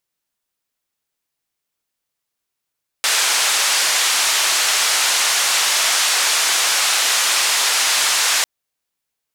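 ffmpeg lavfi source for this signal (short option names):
-f lavfi -i "anoisesrc=c=white:d=5.4:r=44100:seed=1,highpass=f=820,lowpass=f=7700,volume=-7.3dB"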